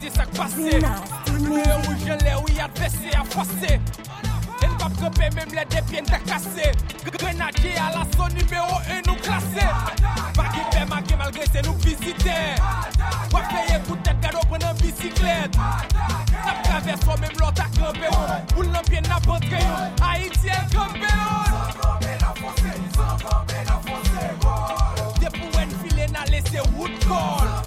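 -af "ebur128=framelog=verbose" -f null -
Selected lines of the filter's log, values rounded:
Integrated loudness:
  I:         -22.8 LUFS
  Threshold: -32.8 LUFS
Loudness range:
  LRA:         1.9 LU
  Threshold: -42.8 LUFS
  LRA low:   -23.7 LUFS
  LRA high:  -21.8 LUFS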